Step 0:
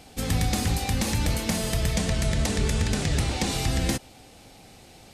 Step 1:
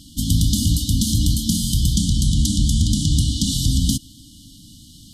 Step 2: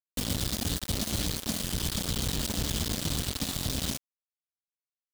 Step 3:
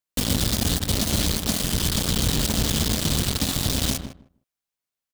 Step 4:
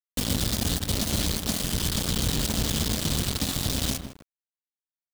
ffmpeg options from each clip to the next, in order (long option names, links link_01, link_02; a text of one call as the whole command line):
ffmpeg -i in.wav -af "afftfilt=real='re*(1-between(b*sr/4096,320,2900))':imag='im*(1-between(b*sr/4096,320,2900))':win_size=4096:overlap=0.75,volume=7.5dB" out.wav
ffmpeg -i in.wav -filter_complex "[0:a]bass=frequency=250:gain=-6,treble=frequency=4000:gain=-11,acrossover=split=390|3800[link_01][link_02][link_03];[link_01]acompressor=threshold=-32dB:ratio=4[link_04];[link_02]acompressor=threshold=-49dB:ratio=4[link_05];[link_03]acompressor=threshold=-37dB:ratio=4[link_06];[link_04][link_05][link_06]amix=inputs=3:normalize=0,acrusher=bits=4:mix=0:aa=0.000001" out.wav
ffmpeg -i in.wav -filter_complex "[0:a]asplit=2[link_01][link_02];[link_02]adelay=155,lowpass=frequency=1200:poles=1,volume=-7.5dB,asplit=2[link_03][link_04];[link_04]adelay=155,lowpass=frequency=1200:poles=1,volume=0.16,asplit=2[link_05][link_06];[link_06]adelay=155,lowpass=frequency=1200:poles=1,volume=0.16[link_07];[link_01][link_03][link_05][link_07]amix=inputs=4:normalize=0,volume=7.5dB" out.wav
ffmpeg -i in.wav -af "acrusher=bits=6:mix=0:aa=0.000001,volume=-3.5dB" out.wav